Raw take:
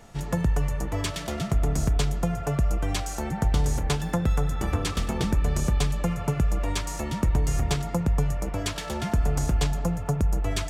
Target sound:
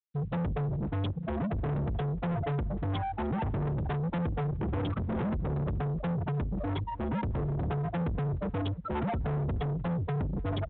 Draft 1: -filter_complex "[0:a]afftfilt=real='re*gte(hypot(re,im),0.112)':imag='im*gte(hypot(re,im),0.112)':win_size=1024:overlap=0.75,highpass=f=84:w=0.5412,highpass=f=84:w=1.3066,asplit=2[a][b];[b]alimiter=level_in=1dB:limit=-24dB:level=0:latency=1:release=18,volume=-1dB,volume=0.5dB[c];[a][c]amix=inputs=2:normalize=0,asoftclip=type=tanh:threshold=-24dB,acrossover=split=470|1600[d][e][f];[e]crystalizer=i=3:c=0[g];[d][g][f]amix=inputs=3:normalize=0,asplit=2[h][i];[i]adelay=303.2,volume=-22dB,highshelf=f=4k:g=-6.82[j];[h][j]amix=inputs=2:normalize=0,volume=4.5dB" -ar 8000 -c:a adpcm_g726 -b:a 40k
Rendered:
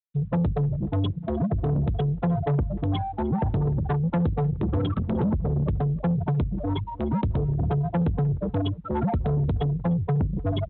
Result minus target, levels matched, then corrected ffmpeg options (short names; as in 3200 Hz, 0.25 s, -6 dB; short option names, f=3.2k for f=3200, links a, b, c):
soft clip: distortion -6 dB
-filter_complex "[0:a]afftfilt=real='re*gte(hypot(re,im),0.112)':imag='im*gte(hypot(re,im),0.112)':win_size=1024:overlap=0.75,highpass=f=84:w=0.5412,highpass=f=84:w=1.3066,asplit=2[a][b];[b]alimiter=level_in=1dB:limit=-24dB:level=0:latency=1:release=18,volume=-1dB,volume=0.5dB[c];[a][c]amix=inputs=2:normalize=0,asoftclip=type=tanh:threshold=-33.5dB,acrossover=split=470|1600[d][e][f];[e]crystalizer=i=3:c=0[g];[d][g][f]amix=inputs=3:normalize=0,asplit=2[h][i];[i]adelay=303.2,volume=-22dB,highshelf=f=4k:g=-6.82[j];[h][j]amix=inputs=2:normalize=0,volume=4.5dB" -ar 8000 -c:a adpcm_g726 -b:a 40k